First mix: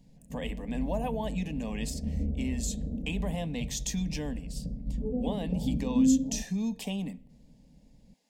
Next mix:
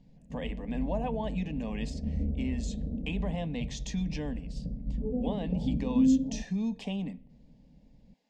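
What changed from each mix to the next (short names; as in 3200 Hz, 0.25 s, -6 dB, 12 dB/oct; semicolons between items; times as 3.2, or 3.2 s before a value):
master: add air absorption 140 m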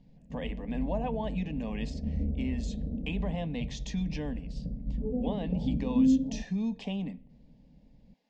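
master: add LPF 5900 Hz 12 dB/oct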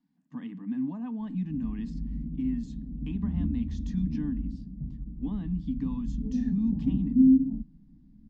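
background: entry +1.20 s; master: add EQ curve 120 Hz 0 dB, 290 Hz +5 dB, 530 Hz -26 dB, 1300 Hz +1 dB, 2400 Hz -16 dB, 3900 Hz -12 dB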